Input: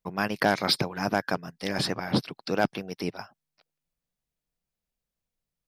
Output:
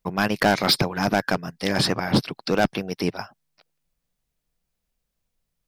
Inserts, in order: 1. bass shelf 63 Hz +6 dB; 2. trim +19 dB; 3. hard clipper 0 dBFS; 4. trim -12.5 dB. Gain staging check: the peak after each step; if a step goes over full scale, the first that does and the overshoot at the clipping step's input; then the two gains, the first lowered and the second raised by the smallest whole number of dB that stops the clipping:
-10.5 dBFS, +8.5 dBFS, 0.0 dBFS, -12.5 dBFS; step 2, 8.5 dB; step 2 +10 dB, step 4 -3.5 dB

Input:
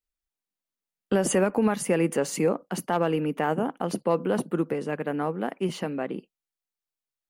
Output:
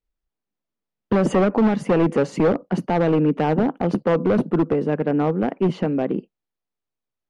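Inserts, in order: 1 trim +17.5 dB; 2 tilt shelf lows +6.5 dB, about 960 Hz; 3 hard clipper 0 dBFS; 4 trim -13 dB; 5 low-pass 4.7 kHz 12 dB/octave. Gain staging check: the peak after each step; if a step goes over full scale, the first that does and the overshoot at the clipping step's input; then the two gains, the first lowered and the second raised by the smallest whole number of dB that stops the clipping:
+5.5 dBFS, +10.0 dBFS, 0.0 dBFS, -13.0 dBFS, -12.5 dBFS; step 1, 10.0 dB; step 1 +7.5 dB, step 4 -3 dB

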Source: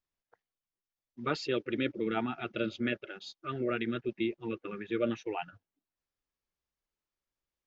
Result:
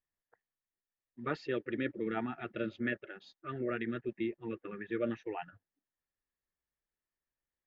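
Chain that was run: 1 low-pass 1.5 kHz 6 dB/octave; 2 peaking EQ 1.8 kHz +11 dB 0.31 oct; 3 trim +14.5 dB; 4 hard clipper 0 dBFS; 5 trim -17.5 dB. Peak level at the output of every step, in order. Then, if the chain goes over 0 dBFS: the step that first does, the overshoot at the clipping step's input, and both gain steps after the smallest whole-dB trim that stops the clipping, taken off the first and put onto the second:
-18.0 dBFS, -18.0 dBFS, -3.5 dBFS, -3.5 dBFS, -21.0 dBFS; nothing clips

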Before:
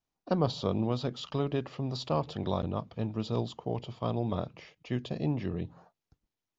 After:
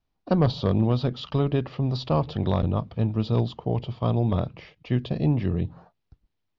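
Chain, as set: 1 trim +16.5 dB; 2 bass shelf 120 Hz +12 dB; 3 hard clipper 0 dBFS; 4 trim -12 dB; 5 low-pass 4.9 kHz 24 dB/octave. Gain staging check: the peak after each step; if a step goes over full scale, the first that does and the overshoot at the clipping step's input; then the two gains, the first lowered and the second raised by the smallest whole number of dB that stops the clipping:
+3.5 dBFS, +3.5 dBFS, 0.0 dBFS, -12.0 dBFS, -11.5 dBFS; step 1, 3.5 dB; step 1 +12.5 dB, step 4 -8 dB

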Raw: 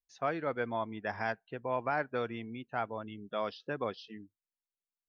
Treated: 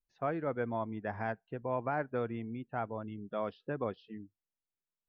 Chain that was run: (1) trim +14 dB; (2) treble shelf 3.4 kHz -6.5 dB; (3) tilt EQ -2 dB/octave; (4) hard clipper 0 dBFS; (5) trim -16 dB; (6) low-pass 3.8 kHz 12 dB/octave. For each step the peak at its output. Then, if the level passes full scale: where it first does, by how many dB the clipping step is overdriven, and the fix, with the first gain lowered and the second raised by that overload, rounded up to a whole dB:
-5.5 dBFS, -6.0 dBFS, -5.0 dBFS, -5.0 dBFS, -21.0 dBFS, -21.0 dBFS; nothing clips

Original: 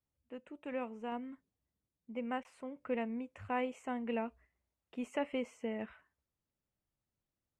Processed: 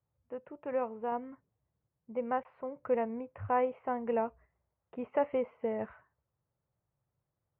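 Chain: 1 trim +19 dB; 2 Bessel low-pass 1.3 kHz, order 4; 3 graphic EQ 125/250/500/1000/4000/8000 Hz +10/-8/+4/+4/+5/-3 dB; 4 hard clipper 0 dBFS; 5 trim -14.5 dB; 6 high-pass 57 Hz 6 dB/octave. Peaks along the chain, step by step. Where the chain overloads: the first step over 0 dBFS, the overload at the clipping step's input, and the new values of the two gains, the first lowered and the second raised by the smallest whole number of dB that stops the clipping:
-4.0 dBFS, -6.0 dBFS, -3.5 dBFS, -3.5 dBFS, -18.0 dBFS, -18.0 dBFS; nothing clips

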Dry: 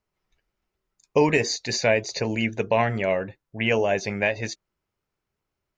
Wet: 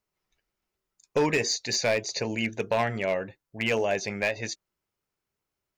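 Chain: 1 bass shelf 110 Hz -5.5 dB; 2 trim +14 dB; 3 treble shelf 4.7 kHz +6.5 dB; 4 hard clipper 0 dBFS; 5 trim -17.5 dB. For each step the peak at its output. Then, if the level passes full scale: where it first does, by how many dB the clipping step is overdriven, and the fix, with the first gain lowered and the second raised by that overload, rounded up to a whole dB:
-8.0 dBFS, +6.0 dBFS, +6.5 dBFS, 0.0 dBFS, -17.5 dBFS; step 2, 6.5 dB; step 2 +7 dB, step 5 -10.5 dB

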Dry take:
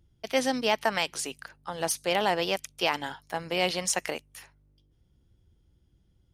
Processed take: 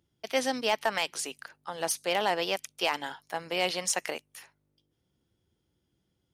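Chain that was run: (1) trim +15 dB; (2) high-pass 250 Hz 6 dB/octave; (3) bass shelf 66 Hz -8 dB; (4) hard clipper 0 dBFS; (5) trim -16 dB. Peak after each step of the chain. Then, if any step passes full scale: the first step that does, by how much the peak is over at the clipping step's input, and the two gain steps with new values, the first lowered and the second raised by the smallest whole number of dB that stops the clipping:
+4.5 dBFS, +4.0 dBFS, +4.0 dBFS, 0.0 dBFS, -16.0 dBFS; step 1, 4.0 dB; step 1 +11 dB, step 5 -12 dB

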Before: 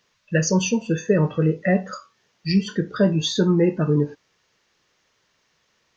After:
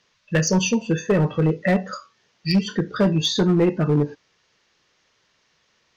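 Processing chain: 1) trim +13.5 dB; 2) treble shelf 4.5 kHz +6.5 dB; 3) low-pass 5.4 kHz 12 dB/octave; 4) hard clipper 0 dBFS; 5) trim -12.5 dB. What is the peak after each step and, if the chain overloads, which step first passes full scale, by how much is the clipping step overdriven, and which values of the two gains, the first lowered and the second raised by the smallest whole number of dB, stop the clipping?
+6.5 dBFS, +7.5 dBFS, +6.5 dBFS, 0.0 dBFS, -12.5 dBFS; step 1, 6.5 dB; step 1 +6.5 dB, step 5 -5.5 dB

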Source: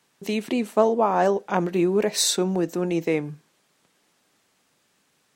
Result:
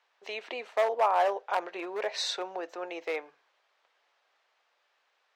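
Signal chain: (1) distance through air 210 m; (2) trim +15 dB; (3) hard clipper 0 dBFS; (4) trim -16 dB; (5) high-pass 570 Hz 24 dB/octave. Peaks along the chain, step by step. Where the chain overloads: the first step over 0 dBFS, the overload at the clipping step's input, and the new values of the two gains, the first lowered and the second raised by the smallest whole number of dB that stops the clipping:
-7.0 dBFS, +8.0 dBFS, 0.0 dBFS, -16.0 dBFS, -14.0 dBFS; step 2, 8.0 dB; step 2 +7 dB, step 4 -8 dB

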